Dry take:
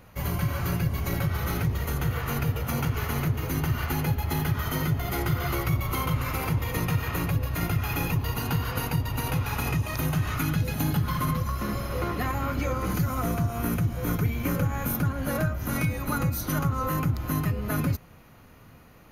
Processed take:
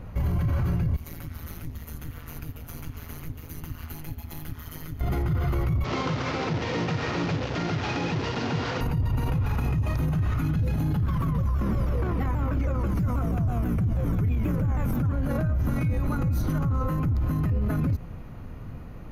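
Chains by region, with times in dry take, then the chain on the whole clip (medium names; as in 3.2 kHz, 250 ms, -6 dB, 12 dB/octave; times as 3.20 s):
0.96–5.01 s: pre-emphasis filter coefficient 0.9 + AM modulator 160 Hz, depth 90%
5.84–8.81 s: one-bit delta coder 32 kbps, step -26.5 dBFS + high-pass 260 Hz + peaking EQ 1.1 kHz -4 dB 0.28 oct
11.06–15.12 s: band-stop 4.2 kHz + vibrato with a chosen wave saw down 6.2 Hz, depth 160 cents
whole clip: tilt EQ -3 dB/octave; peak limiter -23 dBFS; trim +4 dB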